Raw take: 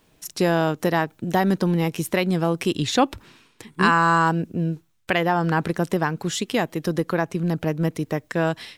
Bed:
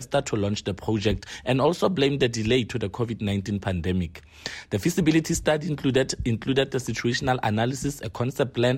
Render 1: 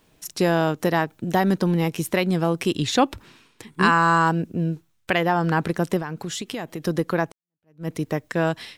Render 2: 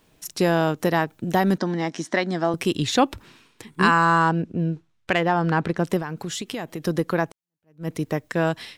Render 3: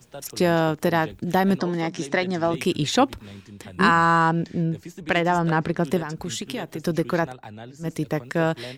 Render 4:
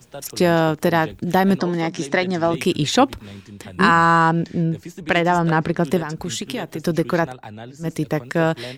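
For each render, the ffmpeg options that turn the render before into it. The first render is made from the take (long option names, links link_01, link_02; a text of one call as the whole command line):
ffmpeg -i in.wav -filter_complex "[0:a]asettb=1/sr,asplit=3[link_01][link_02][link_03];[link_01]atrim=end=5.994[link_04];[link_02]atrim=start=5.99:end=6.82,asetpts=PTS-STARTPTS,afade=type=in:duration=0.004:curve=qsin,afade=type=out:start_time=0.826:duration=0.004:curve=qsin,acompressor=threshold=-26dB:ratio=6:attack=3.2:release=140:knee=1:detection=peak[link_05];[link_03]atrim=start=6.816[link_06];[link_04][link_05]acrossfade=duration=0.004:curve1=hsin:curve2=qsin[link_07];[link_07][link_06]acrossfade=duration=0.004:curve1=qsin:curve2=hsin,asplit=2[link_08][link_09];[link_08]atrim=end=7.32,asetpts=PTS-STARTPTS,afade=type=out:start_time=7.316:duration=0.004:curve=hsin[link_10];[link_09]atrim=start=7.32,asetpts=PTS-STARTPTS,afade=type=in:duration=0.58:curve=exp[link_11];[link_10][link_11]concat=n=2:v=0:a=1" out.wav
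ffmpeg -i in.wav -filter_complex "[0:a]asettb=1/sr,asplit=3[link_01][link_02][link_03];[link_01]atrim=end=1.584[link_04];[link_02]atrim=start=1.58:end=2.54,asetpts=PTS-STARTPTS,afade=type=in:duration=0.004:curve=qsin,afade=type=out:start_time=0.956:duration=0.004:curve=qsin,highpass=250,equalizer=frequency=260:width_type=q:width=4:gain=6,equalizer=frequency=460:width_type=q:width=4:gain=-8,equalizer=frequency=680:width_type=q:width=4:gain=5,equalizer=frequency=1800:width_type=q:width=4:gain=7,equalizer=frequency=2600:width_type=q:width=4:gain=-9,equalizer=frequency=5800:width_type=q:width=4:gain=4,lowpass=frequency=7000:width=0.5412,lowpass=frequency=7000:width=1.3066[link_05];[link_03]atrim=start=2.536[link_06];[link_04][link_05]acrossfade=duration=0.004:curve1=hsin:curve2=qsin[link_07];[link_07][link_06]acrossfade=duration=0.004:curve1=qsin:curve2=hsin,asettb=1/sr,asplit=3[link_08][link_09][link_10];[link_08]atrim=end=4.054[link_11];[link_09]atrim=start=4.05:end=5.86,asetpts=PTS-STARTPTS,afade=type=in:duration=0.004:curve=qsin,afade=type=out:start_time=1.806:duration=0.004:curve=qsin,adynamicsmooth=sensitivity=1.5:basefreq=5500[link_12];[link_10]atrim=start=5.856[link_13];[link_11][link_12]acrossfade=duration=0.004:curve1=hsin:curve2=qsin[link_14];[link_14][link_13]acrossfade=duration=0.004:curve1=qsin:curve2=hsin" out.wav
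ffmpeg -i in.wav -i bed.wav -filter_complex "[1:a]volume=-16dB[link_01];[0:a][link_01]amix=inputs=2:normalize=0" out.wav
ffmpeg -i in.wav -af "volume=3.5dB,alimiter=limit=-2dB:level=0:latency=1" out.wav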